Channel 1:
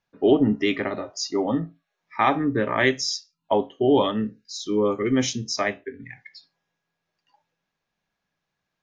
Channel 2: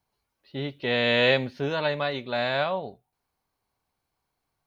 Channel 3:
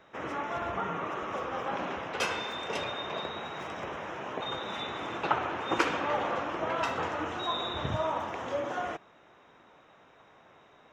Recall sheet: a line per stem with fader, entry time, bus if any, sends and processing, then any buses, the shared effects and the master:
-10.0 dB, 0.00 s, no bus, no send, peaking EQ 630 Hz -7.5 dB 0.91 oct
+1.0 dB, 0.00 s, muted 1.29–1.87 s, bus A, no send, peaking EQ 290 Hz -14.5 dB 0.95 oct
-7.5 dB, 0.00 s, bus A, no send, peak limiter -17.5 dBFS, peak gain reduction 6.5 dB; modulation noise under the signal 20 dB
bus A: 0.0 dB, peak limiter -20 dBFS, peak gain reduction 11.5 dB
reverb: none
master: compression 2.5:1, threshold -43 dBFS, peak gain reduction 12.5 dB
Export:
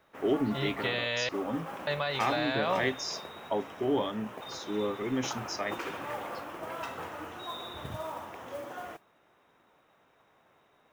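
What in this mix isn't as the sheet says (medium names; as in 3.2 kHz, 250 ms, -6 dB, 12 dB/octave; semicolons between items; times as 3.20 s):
stem 1: missing peaking EQ 630 Hz -7.5 dB 0.91 oct; master: missing compression 2.5:1, threshold -43 dBFS, peak gain reduction 12.5 dB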